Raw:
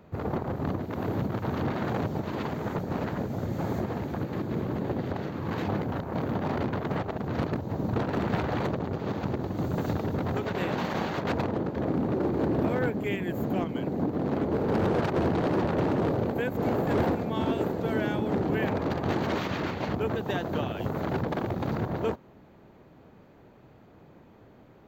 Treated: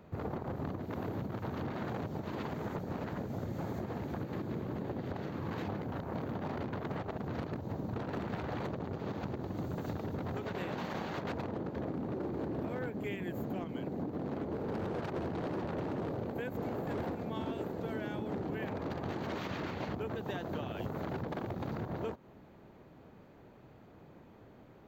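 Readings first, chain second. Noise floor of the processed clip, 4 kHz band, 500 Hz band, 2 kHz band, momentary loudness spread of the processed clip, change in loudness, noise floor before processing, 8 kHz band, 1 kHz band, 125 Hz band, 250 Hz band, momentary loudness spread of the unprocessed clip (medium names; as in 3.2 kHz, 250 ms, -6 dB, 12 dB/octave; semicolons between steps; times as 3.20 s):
-57 dBFS, -9.0 dB, -9.5 dB, -9.0 dB, 4 LU, -9.0 dB, -54 dBFS, no reading, -9.0 dB, -9.0 dB, -9.0 dB, 5 LU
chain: compression, threshold -32 dBFS, peak gain reduction 10.5 dB; trim -2.5 dB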